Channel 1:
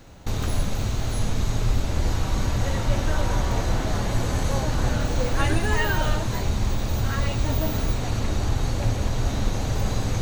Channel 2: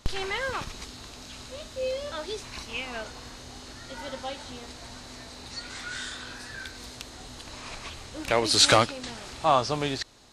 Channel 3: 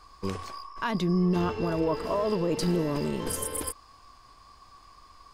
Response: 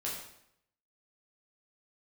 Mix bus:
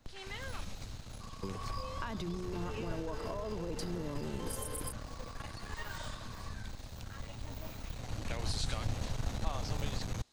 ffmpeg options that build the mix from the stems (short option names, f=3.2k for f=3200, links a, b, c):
-filter_complex "[0:a]equalizer=f=360:w=5.5:g=-13,aeval=exprs='clip(val(0),-1,0.0316)':c=same,volume=-10dB,afade=t=in:st=7.78:d=0.64:silence=0.398107[a];[1:a]adynamicequalizer=threshold=0.0112:dfrequency=1800:dqfactor=0.7:tfrequency=1800:tqfactor=0.7:attack=5:release=100:ratio=0.375:range=3:mode=boostabove:tftype=highshelf,volume=-16.5dB[b];[2:a]acompressor=threshold=-28dB:ratio=6,adelay=1200,volume=-0.5dB[c];[b][c]amix=inputs=2:normalize=0,bandreject=f=60:t=h:w=6,bandreject=f=120:t=h:w=6,bandreject=f=180:t=h:w=6,acompressor=threshold=-40dB:ratio=2,volume=0dB[d];[a][d]amix=inputs=2:normalize=0,acrossover=split=170[e][f];[f]acompressor=threshold=-36dB:ratio=6[g];[e][g]amix=inputs=2:normalize=0"